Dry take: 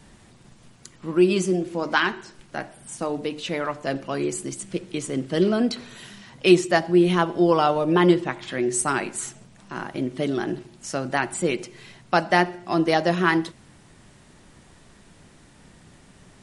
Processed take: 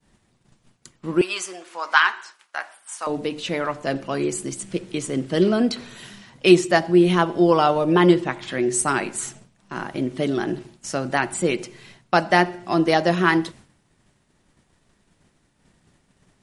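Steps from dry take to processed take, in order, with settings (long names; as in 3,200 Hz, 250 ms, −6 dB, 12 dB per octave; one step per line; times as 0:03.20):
downward expander −41 dBFS
0:01.21–0:03.07: high-pass with resonance 1,100 Hz, resonance Q 1.6
level +2 dB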